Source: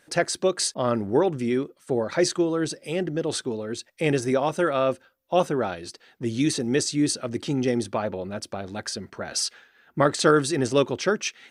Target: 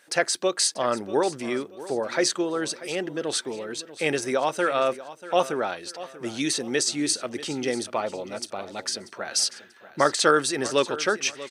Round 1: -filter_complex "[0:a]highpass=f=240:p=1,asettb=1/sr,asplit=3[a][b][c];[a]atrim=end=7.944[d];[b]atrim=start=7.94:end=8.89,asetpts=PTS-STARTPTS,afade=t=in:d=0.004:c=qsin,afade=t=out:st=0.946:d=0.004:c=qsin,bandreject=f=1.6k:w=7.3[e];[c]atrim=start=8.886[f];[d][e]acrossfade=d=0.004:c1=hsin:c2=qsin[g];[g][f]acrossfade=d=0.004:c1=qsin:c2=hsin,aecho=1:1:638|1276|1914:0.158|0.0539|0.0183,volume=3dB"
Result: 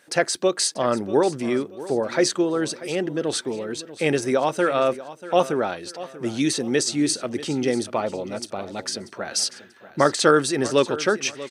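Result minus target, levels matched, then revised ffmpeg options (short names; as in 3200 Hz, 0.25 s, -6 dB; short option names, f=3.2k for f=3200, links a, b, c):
250 Hz band +3.0 dB
-filter_complex "[0:a]highpass=f=680:p=1,asettb=1/sr,asplit=3[a][b][c];[a]atrim=end=7.944[d];[b]atrim=start=7.94:end=8.89,asetpts=PTS-STARTPTS,afade=t=in:d=0.004:c=qsin,afade=t=out:st=0.946:d=0.004:c=qsin,bandreject=f=1.6k:w=7.3[e];[c]atrim=start=8.886[f];[d][e]acrossfade=d=0.004:c1=hsin:c2=qsin[g];[g][f]acrossfade=d=0.004:c1=qsin:c2=hsin,aecho=1:1:638|1276|1914:0.158|0.0539|0.0183,volume=3dB"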